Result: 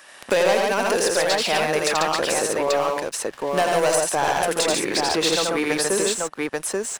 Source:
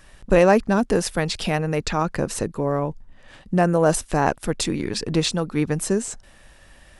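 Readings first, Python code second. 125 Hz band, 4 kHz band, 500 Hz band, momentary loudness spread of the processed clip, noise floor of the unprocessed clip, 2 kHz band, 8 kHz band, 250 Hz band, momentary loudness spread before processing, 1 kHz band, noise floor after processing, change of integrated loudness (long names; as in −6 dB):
−12.0 dB, +6.5 dB, +1.5 dB, 6 LU, −51 dBFS, +5.0 dB, +6.5 dB, −5.5 dB, 8 LU, +3.0 dB, −45 dBFS, +1.0 dB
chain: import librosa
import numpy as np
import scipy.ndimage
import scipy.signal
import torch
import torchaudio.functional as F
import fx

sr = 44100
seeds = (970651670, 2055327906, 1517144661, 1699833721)

p1 = scipy.signal.sosfilt(scipy.signal.butter(2, 530.0, 'highpass', fs=sr, output='sos'), x)
p2 = fx.leveller(p1, sr, passes=3)
p3 = p2 + fx.echo_multitap(p2, sr, ms=(83, 141, 835), db=(-3.0, -3.5, -5.5), dry=0)
p4 = fx.band_squash(p3, sr, depth_pct=70)
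y = p4 * librosa.db_to_amplitude(-8.0)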